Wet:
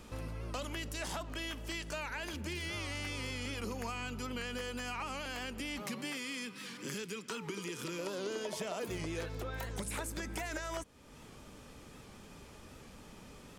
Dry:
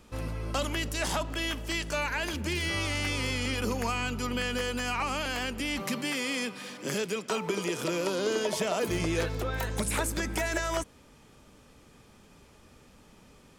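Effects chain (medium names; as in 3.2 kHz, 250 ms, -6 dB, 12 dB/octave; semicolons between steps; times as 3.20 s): 6.17–7.99 s: peaking EQ 650 Hz -14.5 dB 0.68 oct; compression 2:1, threshold -51 dBFS, peak gain reduction 14.5 dB; warped record 78 rpm, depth 100 cents; trim +3.5 dB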